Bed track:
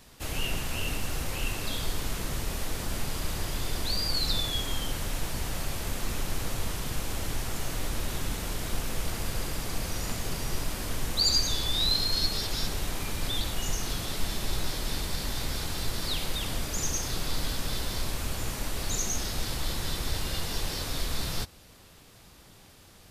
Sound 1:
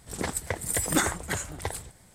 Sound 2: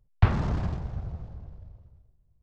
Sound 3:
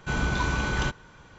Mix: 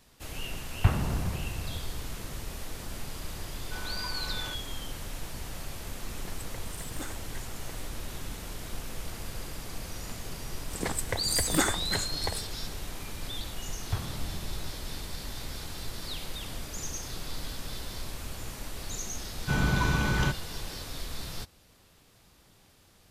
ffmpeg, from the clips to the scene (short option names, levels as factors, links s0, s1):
-filter_complex "[2:a]asplit=2[s0][s1];[3:a]asplit=2[s2][s3];[1:a]asplit=2[s4][s5];[0:a]volume=0.473[s6];[s2]highpass=490[s7];[s4]acrusher=bits=6:mode=log:mix=0:aa=0.000001[s8];[s3]equalizer=f=150:w=1.5:g=6[s9];[s0]atrim=end=2.42,asetpts=PTS-STARTPTS,volume=0.708,afade=t=in:d=0.004:c=hsin,afade=t=out:st=2.416:d=0.004:c=hsin,adelay=620[s10];[s7]atrim=end=1.38,asetpts=PTS-STARTPTS,volume=0.282,afade=t=in:d=0.004:c=hsin,afade=t=out:st=1.376:d=0.004:c=hsin,adelay=3640[s11];[s8]atrim=end=2.14,asetpts=PTS-STARTPTS,volume=0.141,afade=t=in:d=0.004:c=hsin,afade=t=out:st=2.136:d=0.004:c=hsin,adelay=6040[s12];[s5]atrim=end=2.14,asetpts=PTS-STARTPTS,volume=0.841,afade=t=in:d=0.004:c=hsin,afade=t=out:st=2.136:d=0.004:c=hsin,adelay=10620[s13];[s1]atrim=end=2.42,asetpts=PTS-STARTPTS,volume=0.251,afade=t=in:d=0.004:c=hsin,afade=t=out:st=2.416:d=0.004:c=hsin,adelay=13700[s14];[s9]atrim=end=1.38,asetpts=PTS-STARTPTS,volume=0.841,afade=t=in:d=0.004:c=hsin,afade=t=out:st=1.376:d=0.004:c=hsin,adelay=19410[s15];[s6][s10][s11][s12][s13][s14][s15]amix=inputs=7:normalize=0"